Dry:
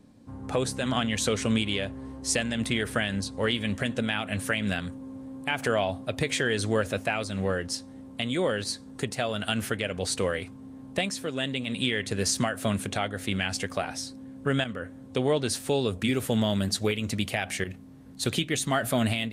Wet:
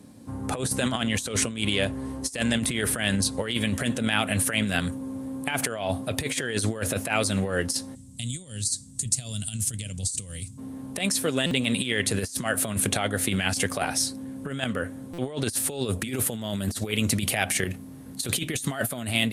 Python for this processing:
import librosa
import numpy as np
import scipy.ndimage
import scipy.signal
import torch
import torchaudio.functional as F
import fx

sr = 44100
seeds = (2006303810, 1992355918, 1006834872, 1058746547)

y = scipy.signal.sosfilt(scipy.signal.butter(4, 60.0, 'highpass', fs=sr, output='sos'), x)
y = fx.peak_eq(y, sr, hz=11000.0, db=12.5, octaves=0.94)
y = fx.over_compress(y, sr, threshold_db=-29.0, ratio=-0.5)
y = fx.curve_eq(y, sr, hz=(130.0, 420.0, 1500.0, 7700.0, 12000.0), db=(0, -22, -25, 7, -8), at=(7.94, 10.57), fade=0.02)
y = fx.buffer_glitch(y, sr, at_s=(11.46, 15.13), block=256, repeats=8)
y = y * 10.0 ** (3.5 / 20.0)